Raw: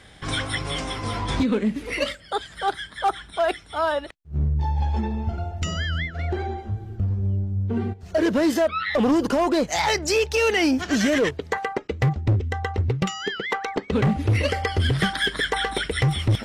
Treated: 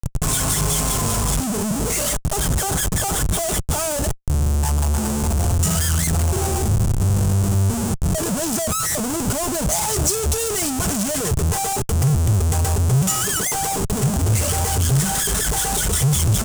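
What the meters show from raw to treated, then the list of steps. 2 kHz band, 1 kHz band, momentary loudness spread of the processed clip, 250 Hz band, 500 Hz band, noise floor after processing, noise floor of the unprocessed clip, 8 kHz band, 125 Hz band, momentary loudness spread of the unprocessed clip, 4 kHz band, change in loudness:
-4.0 dB, +0.5 dB, 4 LU, +0.5 dB, -2.0 dB, -24 dBFS, -46 dBFS, +18.0 dB, +6.0 dB, 8 LU, +1.0 dB, +4.5 dB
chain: comb 4.7 ms, depth 61%; Schmitt trigger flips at -39 dBFS; graphic EQ 125/250/500/1000/2000/4000/8000 Hz +7/-6/-4/-3/-11/-8/+10 dB; gain +4.5 dB

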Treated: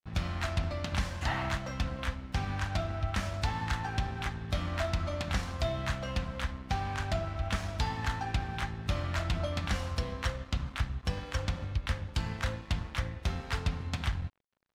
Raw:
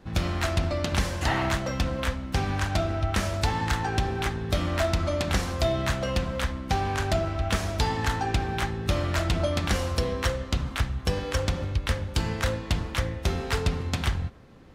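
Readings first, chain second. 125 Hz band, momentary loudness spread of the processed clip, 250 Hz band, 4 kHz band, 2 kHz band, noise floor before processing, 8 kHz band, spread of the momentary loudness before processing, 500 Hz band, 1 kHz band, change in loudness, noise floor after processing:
-5.5 dB, 3 LU, -8.5 dB, -7.0 dB, -6.0 dB, -38 dBFS, -9.5 dB, 3 LU, -10.0 dB, -6.5 dB, -6.5 dB, -48 dBFS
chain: bell 400 Hz -9.5 dB 0.91 oct; crossover distortion -45.5 dBFS; high shelf 7500 Hz -10.5 dB; gain -4.5 dB

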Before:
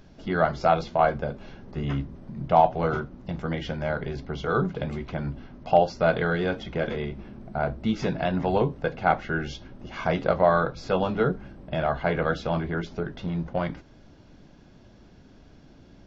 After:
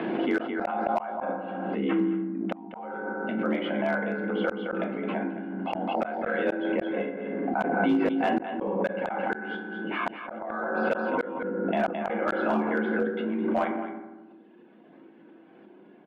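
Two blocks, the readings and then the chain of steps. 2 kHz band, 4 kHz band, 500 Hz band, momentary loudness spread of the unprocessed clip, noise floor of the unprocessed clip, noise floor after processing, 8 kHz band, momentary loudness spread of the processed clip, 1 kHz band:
+0.5 dB, -4.0 dB, -3.0 dB, 13 LU, -52 dBFS, -53 dBFS, n/a, 8 LU, -4.0 dB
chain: reverb removal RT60 1.6 s; FDN reverb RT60 1.1 s, low-frequency decay 1.45×, high-frequency decay 0.4×, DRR 1 dB; mistuned SSB +51 Hz 160–2900 Hz; flipped gate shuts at -14 dBFS, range -40 dB; echo 0.216 s -12 dB; hard clip -18 dBFS, distortion -22 dB; backwards sustainer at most 24 dB/s

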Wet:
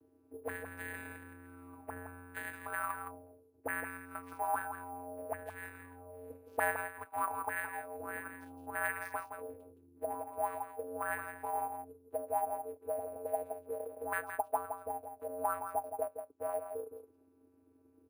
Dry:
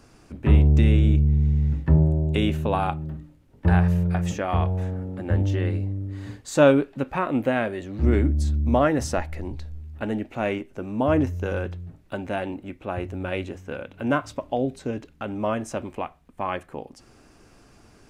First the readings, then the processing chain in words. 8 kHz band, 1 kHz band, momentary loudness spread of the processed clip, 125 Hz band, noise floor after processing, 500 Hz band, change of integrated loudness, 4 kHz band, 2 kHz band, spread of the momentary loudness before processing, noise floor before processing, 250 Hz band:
-7.0 dB, -6.5 dB, 13 LU, -36.0 dB, -67 dBFS, -14.0 dB, -16.0 dB, under -20 dB, -6.0 dB, 16 LU, -55 dBFS, -27.0 dB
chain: minimum comb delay 1.7 ms; high shelf 2400 Hz +7.5 dB; notch 3000 Hz; vocoder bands 8, square 89.4 Hz; auto-wah 330–1700 Hz, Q 6.9, up, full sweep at -23.5 dBFS; sample-and-hold 4×; echo 0.167 s -8 dB; gain +7.5 dB

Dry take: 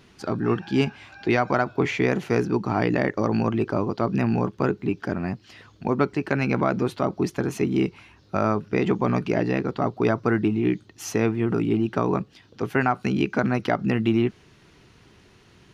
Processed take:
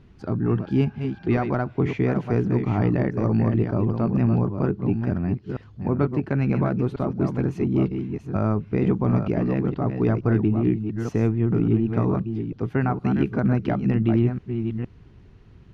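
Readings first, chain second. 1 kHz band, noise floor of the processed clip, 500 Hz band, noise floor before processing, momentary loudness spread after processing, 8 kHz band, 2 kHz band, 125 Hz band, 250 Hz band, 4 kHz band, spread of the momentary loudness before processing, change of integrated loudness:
-5.0 dB, -49 dBFS, -2.0 dB, -55 dBFS, 6 LU, under -15 dB, -7.5 dB, +6.0 dB, +1.5 dB, under -10 dB, 6 LU, +1.0 dB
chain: reverse delay 0.464 s, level -7 dB; RIAA curve playback; gain -6 dB

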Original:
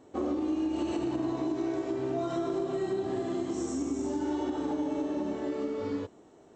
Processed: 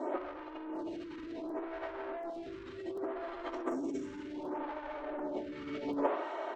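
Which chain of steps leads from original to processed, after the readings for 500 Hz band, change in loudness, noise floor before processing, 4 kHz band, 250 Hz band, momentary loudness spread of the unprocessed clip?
-6.0 dB, -7.5 dB, -56 dBFS, -6.5 dB, -9.5 dB, 3 LU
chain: BPF 520–2600 Hz; comb 3.2 ms, depth 92%; soft clip -36 dBFS, distortion -10 dB; frequency-shifting echo 92 ms, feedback 42%, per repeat +140 Hz, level -15 dB; negative-ratio compressor -46 dBFS, ratio -0.5; crackling interface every 0.74 s, samples 128, repeat, from 0.75; photocell phaser 0.67 Hz; gain +13 dB

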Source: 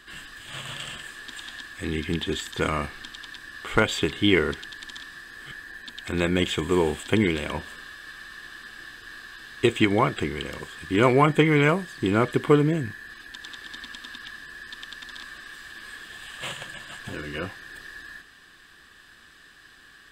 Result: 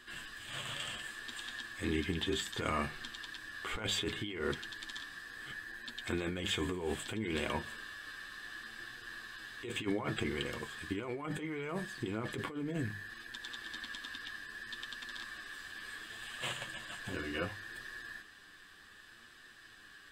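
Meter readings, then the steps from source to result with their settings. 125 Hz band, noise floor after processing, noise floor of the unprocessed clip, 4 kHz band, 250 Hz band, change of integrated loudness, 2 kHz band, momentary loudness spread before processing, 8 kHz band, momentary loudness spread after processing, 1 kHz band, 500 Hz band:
-14.5 dB, -57 dBFS, -52 dBFS, -7.5 dB, -14.0 dB, -15.0 dB, -9.5 dB, 20 LU, -6.0 dB, 11 LU, -14.5 dB, -15.5 dB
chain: notches 50/100/150/200 Hz; negative-ratio compressor -27 dBFS, ratio -1; flange 0.67 Hz, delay 8.1 ms, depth 2.6 ms, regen +42%; gain -5 dB

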